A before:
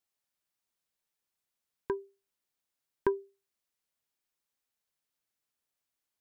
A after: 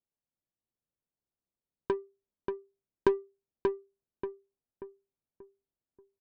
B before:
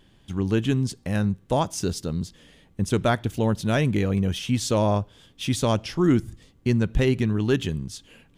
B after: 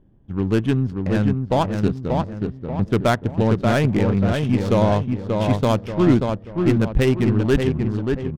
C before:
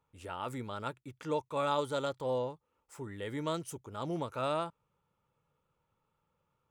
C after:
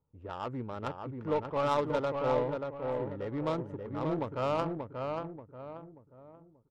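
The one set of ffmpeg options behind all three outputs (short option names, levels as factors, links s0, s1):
-filter_complex "[0:a]aeval=exprs='0.355*(cos(1*acos(clip(val(0)/0.355,-1,1)))-cos(1*PI/2))+0.00282*(cos(7*acos(clip(val(0)/0.355,-1,1)))-cos(7*PI/2))+0.00631*(cos(8*acos(clip(val(0)/0.355,-1,1)))-cos(8*PI/2))':c=same,asplit=2[s0][s1];[s1]adelay=584,lowpass=f=3000:p=1,volume=0.631,asplit=2[s2][s3];[s3]adelay=584,lowpass=f=3000:p=1,volume=0.43,asplit=2[s4][s5];[s5]adelay=584,lowpass=f=3000:p=1,volume=0.43,asplit=2[s6][s7];[s7]adelay=584,lowpass=f=3000:p=1,volume=0.43,asplit=2[s8][s9];[s9]adelay=584,lowpass=f=3000:p=1,volume=0.43[s10];[s0][s2][s4][s6][s8][s10]amix=inputs=6:normalize=0,adynamicsmooth=sensitivity=3:basefreq=570,volume=1.5"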